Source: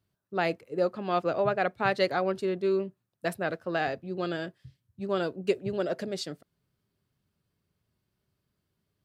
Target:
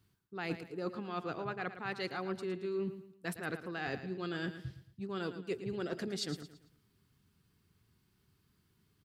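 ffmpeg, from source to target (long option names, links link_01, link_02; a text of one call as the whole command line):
ffmpeg -i in.wav -af "equalizer=frequency=600:width=3.2:gain=-14,areverse,acompressor=threshold=-41dB:ratio=12,areverse,aecho=1:1:112|224|336|448:0.266|0.0958|0.0345|0.0124,volume=6.5dB" out.wav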